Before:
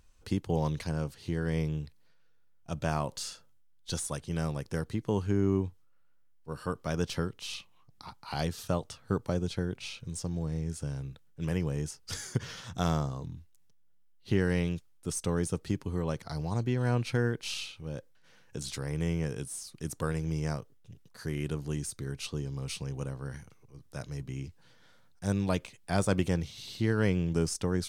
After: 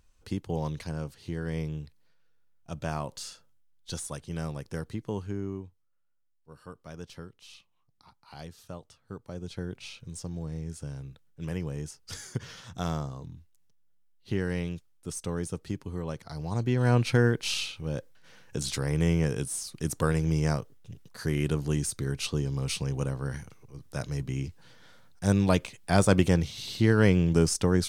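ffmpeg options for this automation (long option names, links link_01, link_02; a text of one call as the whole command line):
ffmpeg -i in.wav -af "volume=15.5dB,afade=type=out:start_time=4.92:duration=0.74:silence=0.334965,afade=type=in:start_time=9.26:duration=0.42:silence=0.354813,afade=type=in:start_time=16.36:duration=0.62:silence=0.375837" out.wav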